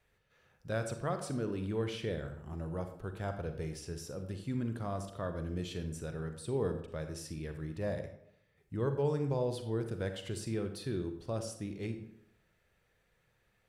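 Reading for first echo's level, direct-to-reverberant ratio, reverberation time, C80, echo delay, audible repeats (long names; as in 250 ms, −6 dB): no echo audible, 7.0 dB, 0.75 s, 11.0 dB, no echo audible, no echo audible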